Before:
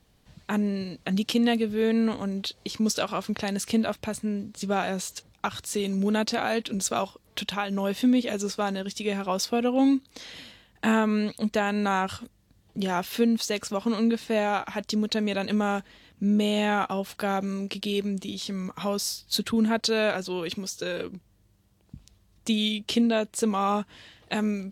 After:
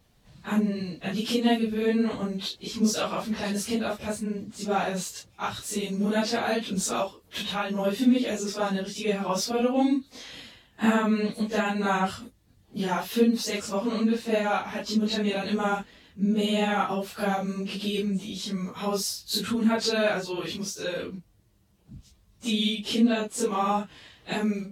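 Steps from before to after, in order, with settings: phase randomisation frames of 100 ms

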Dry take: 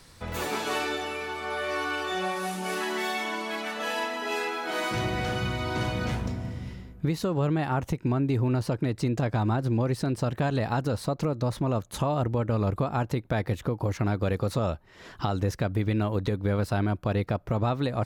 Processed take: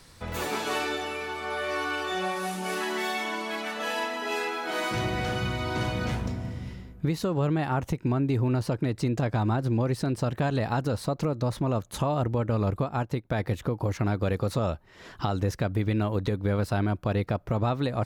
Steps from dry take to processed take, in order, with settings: 12.77–13.39 s: upward expansion 1.5:1, over -38 dBFS

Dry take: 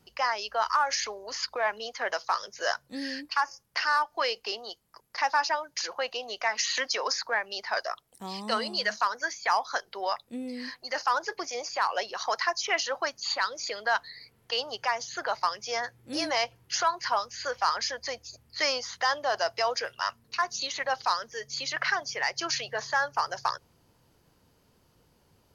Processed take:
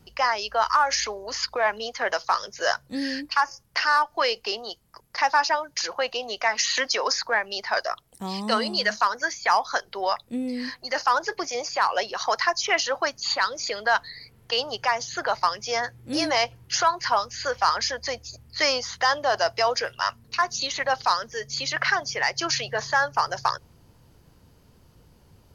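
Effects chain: bass shelf 170 Hz +10 dB; trim +4.5 dB

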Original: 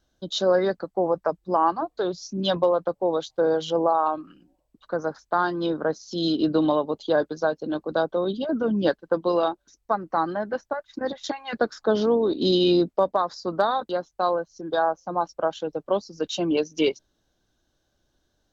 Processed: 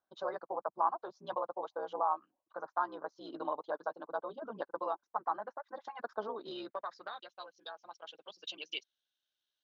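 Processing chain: granular stretch 0.52×, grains 30 ms; band-pass sweep 1 kHz -> 3.1 kHz, 6.21–7.42 s; trim -4.5 dB

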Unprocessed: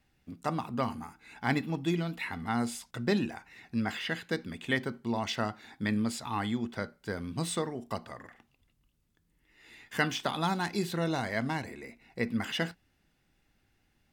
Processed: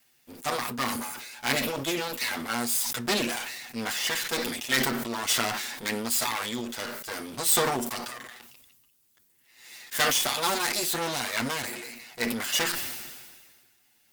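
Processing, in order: comb filter that takes the minimum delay 8.2 ms; RIAA curve recording; decay stretcher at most 35 dB/s; trim +4 dB

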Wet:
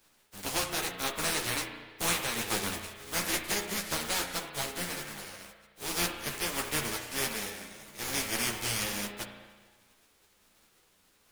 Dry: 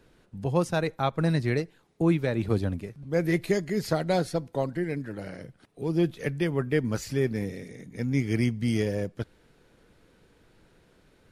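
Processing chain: spectral contrast reduction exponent 0.22; spring tank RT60 1.5 s, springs 34 ms, chirp 45 ms, DRR 5 dB; three-phase chorus; trim -3.5 dB

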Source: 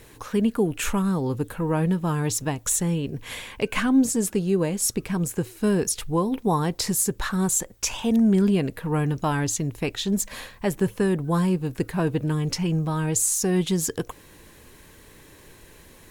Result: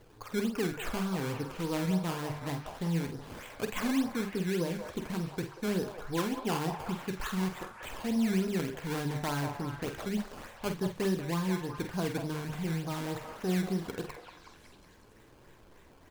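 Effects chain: low-pass 3 kHz 12 dB/octave; hum notches 50/100/150/200 Hz; in parallel at -2 dB: peak limiter -18.5 dBFS, peak gain reduction 8 dB; on the sum: flange 0.26 Hz, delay 8.4 ms, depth 8.1 ms, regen +71%; decimation with a swept rate 16×, swing 100% 3.4 Hz; doubling 48 ms -8.5 dB; repeats whose band climbs or falls 186 ms, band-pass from 750 Hz, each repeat 0.7 oct, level -3.5 dB; trim -8.5 dB

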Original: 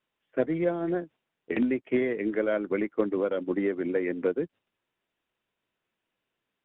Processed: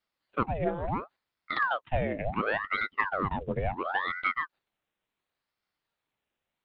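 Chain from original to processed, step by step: ring modulator with a swept carrier 950 Hz, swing 85%, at 0.71 Hz

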